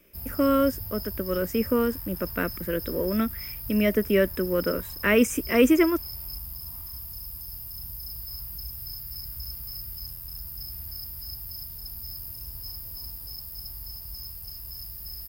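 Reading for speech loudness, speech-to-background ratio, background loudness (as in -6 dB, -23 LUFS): -25.0 LUFS, 10.5 dB, -35.5 LUFS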